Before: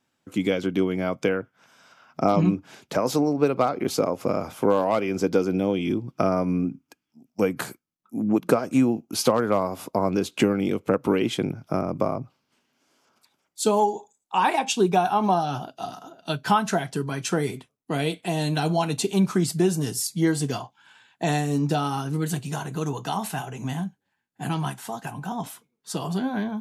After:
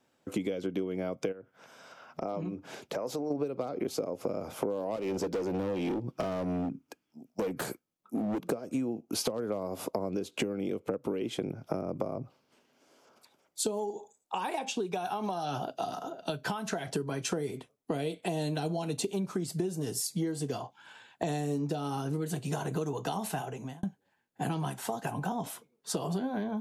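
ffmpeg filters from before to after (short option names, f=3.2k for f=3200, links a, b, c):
-filter_complex "[0:a]asplit=3[a][b][c];[a]afade=t=out:st=1.31:d=0.02[d];[b]acompressor=threshold=-40dB:ratio=3:attack=3.2:release=140:knee=1:detection=peak,afade=t=in:st=1.31:d=0.02,afade=t=out:st=3.3:d=0.02[e];[c]afade=t=in:st=3.3:d=0.02[f];[d][e][f]amix=inputs=3:normalize=0,asettb=1/sr,asplit=3[g][h][i];[g]atrim=end=4.964[j];[h]atrim=start=4.96:end=8.5,asetpts=PTS-STARTPTS,afade=t=in:d=0.004:c=qsin,afade=t=out:st=3.536:d=0.004:c=qsin,volume=25.5dB,asoftclip=hard,volume=-25.5dB[k];[i]atrim=start=8.496[l];[j][k]acrossfade=d=0.004:c1=hsin:c2=qsin[m];[m][l]acrossfade=d=0.004:c1=qsin:c2=hsin,asettb=1/sr,asplit=3[n][o][p];[n]atrim=end=13.904[q];[o]atrim=start=13.9:end=16.87,asetpts=PTS-STARTPTS,afade=t=in:d=0.004:c=qsin,afade=t=out:st=2.966:d=0.004:c=qsin,acrossover=split=1400|7300[r][s][t];[r]acompressor=threshold=-31dB:ratio=4[u];[s]acompressor=threshold=-36dB:ratio=4[v];[t]acompressor=threshold=-51dB:ratio=4[w];[u][v][w]amix=inputs=3:normalize=0[x];[p]atrim=start=16.866[y];[q][x]acrossfade=d=0.004:c1=hsin:c2=qsin[z];[z][y]acrossfade=d=0.004:c1=qsin:c2=hsin,asplit=2[aa][ab];[aa]atrim=end=23.83,asetpts=PTS-STARTPTS,afade=t=out:st=23.18:d=0.65[ac];[ab]atrim=start=23.83,asetpts=PTS-STARTPTS,afade=t=in:d=0.004:c=hsin[ad];[ac][ad]concat=n=2:v=0:a=1,acrossover=split=410|3000[ae][af][ag];[af]acompressor=threshold=-33dB:ratio=2.5[ah];[ae][ah][ag]amix=inputs=3:normalize=0,equalizer=f=510:w=1.1:g=8.5,acompressor=threshold=-29dB:ratio=10"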